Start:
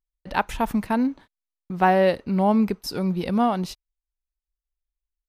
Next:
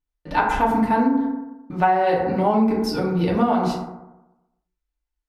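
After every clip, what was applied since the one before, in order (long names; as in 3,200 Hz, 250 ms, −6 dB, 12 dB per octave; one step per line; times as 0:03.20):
high-shelf EQ 7,700 Hz −9.5 dB
feedback delay network reverb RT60 0.97 s, low-frequency decay 1×, high-frequency decay 0.35×, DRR −5.5 dB
downward compressor 12 to 1, threshold −14 dBFS, peak gain reduction 10 dB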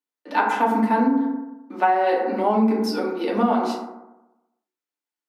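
Chebyshev high-pass filter 200 Hz, order 10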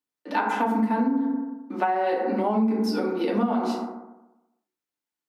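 parametric band 150 Hz +7.5 dB 1.5 octaves
downward compressor 3 to 1, threshold −22 dBFS, peak gain reduction 9.5 dB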